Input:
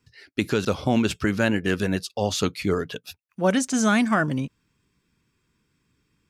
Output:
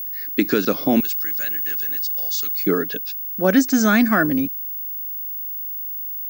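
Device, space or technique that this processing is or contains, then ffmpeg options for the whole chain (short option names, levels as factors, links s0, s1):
old television with a line whistle: -filter_complex "[0:a]highpass=f=170:w=0.5412,highpass=f=170:w=1.3066,equalizer=f=290:t=q:w=4:g=8,equalizer=f=930:t=q:w=4:g=-6,equalizer=f=1700:t=q:w=4:g=5,equalizer=f=3000:t=q:w=4:g=-6,equalizer=f=5000:t=q:w=4:g=4,lowpass=f=7000:w=0.5412,lowpass=f=7000:w=1.3066,aeval=exprs='val(0)+0.0355*sin(2*PI*15625*n/s)':c=same,asettb=1/sr,asplit=3[s0][s1][s2];[s0]atrim=end=1.004[s3];[s1]atrim=start=1:end=2.67,asetpts=PTS-STARTPTS,afade=t=in:d=0.004:c=qsin,afade=t=out:st=1.666:d=0.004:c=qsin,aderivative[s4];[s2]atrim=start=2.666[s5];[s3][s4]acrossfade=d=0.004:c1=hsin:c2=qsin[s6];[s6][s5]acrossfade=d=0.004:c1=qsin:c2=hsin,volume=1.41"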